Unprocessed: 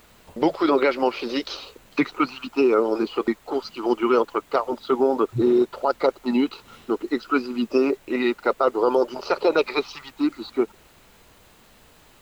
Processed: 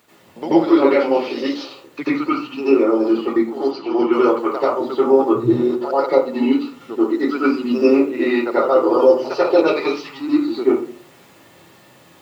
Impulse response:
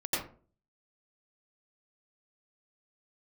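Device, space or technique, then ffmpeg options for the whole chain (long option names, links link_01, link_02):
far laptop microphone: -filter_complex "[1:a]atrim=start_sample=2205[link_01];[0:a][link_01]afir=irnorm=-1:irlink=0,highpass=frequency=100:width=0.5412,highpass=frequency=100:width=1.3066,dynaudnorm=framelen=200:gausssize=11:maxgain=11.5dB,asettb=1/sr,asplit=3[link_02][link_03][link_04];[link_02]atrim=end=3.714[link_05];[link_03]atrim=start=3.71:end=4.13,asetpts=PTS-STARTPTS,afade=type=in:duration=0.004:curve=qsin,afade=type=out:start_time=0.416:duration=0.004:curve=qsin,lowpass=frequency=5400:width=0.5412,lowpass=frequency=5400:width=1.3066[link_06];[link_04]atrim=start=4.126[link_07];[link_05][link_06]acrossfade=duration=0.004:curve1=hsin:curve2=qsin[link_08];[link_08][link_07]acrossfade=duration=0.004:curve1=qsin:curve2=hsin,volume=-1dB"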